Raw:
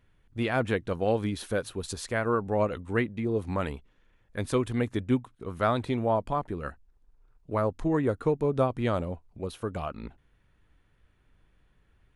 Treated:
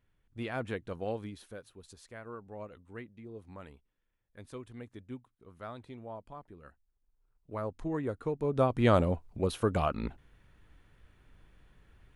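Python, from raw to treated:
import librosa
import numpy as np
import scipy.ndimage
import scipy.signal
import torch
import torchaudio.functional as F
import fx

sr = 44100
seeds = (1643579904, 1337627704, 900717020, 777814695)

y = fx.gain(x, sr, db=fx.line((1.07, -9.0), (1.62, -18.0), (6.64, -18.0), (7.77, -8.0), (8.3, -8.0), (8.93, 4.5)))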